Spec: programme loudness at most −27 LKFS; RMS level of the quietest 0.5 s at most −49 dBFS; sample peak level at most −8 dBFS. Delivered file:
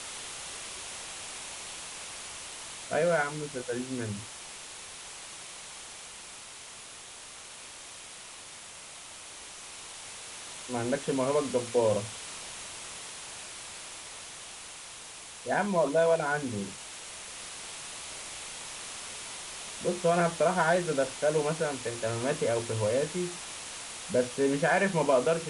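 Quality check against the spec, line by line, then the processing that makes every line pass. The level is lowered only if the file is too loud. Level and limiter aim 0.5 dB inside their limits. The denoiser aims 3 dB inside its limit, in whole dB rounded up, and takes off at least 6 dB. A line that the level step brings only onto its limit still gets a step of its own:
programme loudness −32.0 LKFS: in spec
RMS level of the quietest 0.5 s −46 dBFS: out of spec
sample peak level −13.5 dBFS: in spec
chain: broadband denoise 6 dB, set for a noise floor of −46 dBFS

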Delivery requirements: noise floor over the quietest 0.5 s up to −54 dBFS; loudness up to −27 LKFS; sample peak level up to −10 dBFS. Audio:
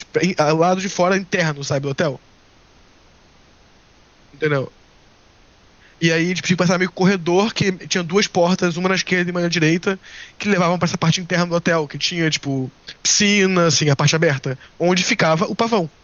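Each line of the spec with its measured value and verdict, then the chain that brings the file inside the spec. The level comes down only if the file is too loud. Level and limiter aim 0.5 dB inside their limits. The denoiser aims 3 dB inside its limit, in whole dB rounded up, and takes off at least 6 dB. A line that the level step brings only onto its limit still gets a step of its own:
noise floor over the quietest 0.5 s −51 dBFS: out of spec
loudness −18.0 LKFS: out of spec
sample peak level −5.0 dBFS: out of spec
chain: level −9.5 dB

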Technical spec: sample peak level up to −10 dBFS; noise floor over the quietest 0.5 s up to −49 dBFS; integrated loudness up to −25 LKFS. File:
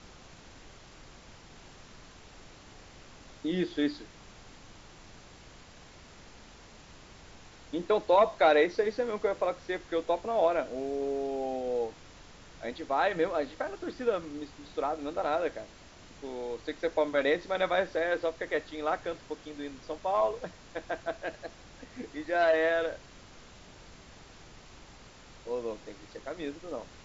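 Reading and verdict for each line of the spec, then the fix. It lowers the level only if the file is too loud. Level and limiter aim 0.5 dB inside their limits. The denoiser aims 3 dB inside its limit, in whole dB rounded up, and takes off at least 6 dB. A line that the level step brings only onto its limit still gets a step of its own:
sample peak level −12.0 dBFS: in spec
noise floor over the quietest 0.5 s −52 dBFS: in spec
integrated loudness −31.0 LKFS: in spec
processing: no processing needed

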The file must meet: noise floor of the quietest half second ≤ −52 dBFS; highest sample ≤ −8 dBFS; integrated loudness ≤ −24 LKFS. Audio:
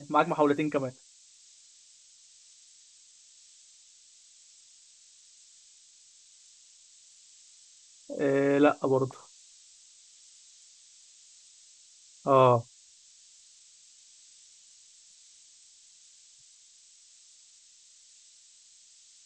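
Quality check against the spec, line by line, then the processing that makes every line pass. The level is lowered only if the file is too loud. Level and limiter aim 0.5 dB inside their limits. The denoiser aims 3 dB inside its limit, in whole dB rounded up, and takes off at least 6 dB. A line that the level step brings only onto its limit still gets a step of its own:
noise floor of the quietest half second −58 dBFS: in spec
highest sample −8.5 dBFS: in spec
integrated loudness −26.0 LKFS: in spec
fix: no processing needed

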